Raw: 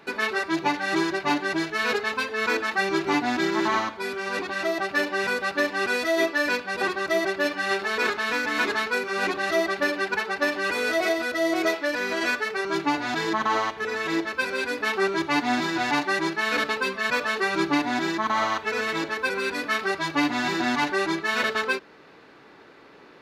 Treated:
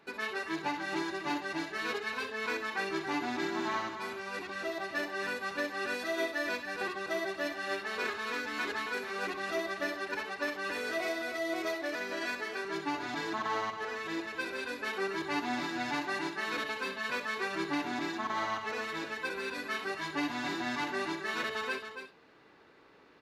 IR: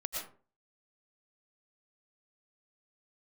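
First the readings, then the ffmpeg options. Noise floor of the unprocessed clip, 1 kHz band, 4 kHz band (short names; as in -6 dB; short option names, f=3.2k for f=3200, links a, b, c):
-50 dBFS, -9.5 dB, -9.5 dB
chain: -filter_complex "[0:a]aecho=1:1:276:0.376[a];[1:a]atrim=start_sample=2205,atrim=end_sample=4410,asetrate=66150,aresample=44100[b];[a][b]afir=irnorm=-1:irlink=0,volume=-5dB"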